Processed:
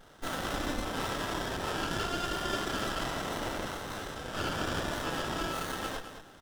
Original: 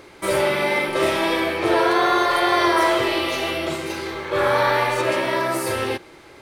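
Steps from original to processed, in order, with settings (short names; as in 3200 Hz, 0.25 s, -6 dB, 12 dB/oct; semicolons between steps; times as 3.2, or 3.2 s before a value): steep high-pass 1300 Hz 96 dB/oct; limiter -19.5 dBFS, peak gain reduction 7 dB; chorus voices 4, 0.62 Hz, delay 28 ms, depth 4.2 ms; feedback echo 0.214 s, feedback 24%, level -10 dB; running maximum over 17 samples; gain +2 dB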